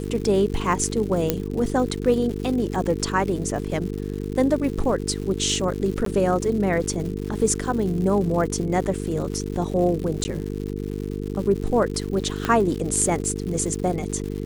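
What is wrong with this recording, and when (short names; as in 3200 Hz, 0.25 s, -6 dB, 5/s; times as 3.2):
buzz 50 Hz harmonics 9 -29 dBFS
crackle 190/s -31 dBFS
1.3 pop -5 dBFS
6.05–6.06 gap 13 ms
10.24–10.25 gap 10 ms
12.45 pop -9 dBFS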